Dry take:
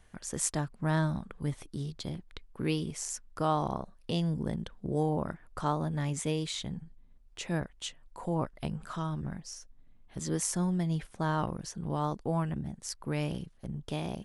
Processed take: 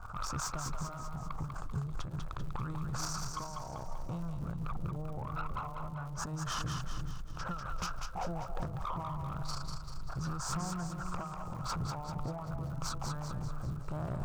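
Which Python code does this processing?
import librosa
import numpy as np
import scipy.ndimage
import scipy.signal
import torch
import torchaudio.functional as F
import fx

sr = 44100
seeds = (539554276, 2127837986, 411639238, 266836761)

p1 = fx.high_shelf(x, sr, hz=5600.0, db=-11.0)
p2 = fx.formant_shift(p1, sr, semitones=-4)
p3 = fx.curve_eq(p2, sr, hz=(130.0, 220.0, 420.0, 1300.0, 2100.0, 5800.0), db=(0, -17, -12, 11, -29, -10))
p4 = fx.transient(p3, sr, attack_db=-8, sustain_db=11)
p5 = fx.over_compress(p4, sr, threshold_db=-45.0, ratio=-1.0)
p6 = 10.0 ** (-38.5 / 20.0) * np.tanh(p5 / 10.0 ** (-38.5 / 20.0))
p7 = fx.dmg_crackle(p6, sr, seeds[0], per_s=120.0, level_db=-55.0)
p8 = p7 + fx.echo_split(p7, sr, split_hz=570.0, low_ms=332, high_ms=195, feedback_pct=52, wet_db=-5.0, dry=0)
p9 = fx.end_taper(p8, sr, db_per_s=120.0)
y = p9 * 10.0 ** (7.5 / 20.0)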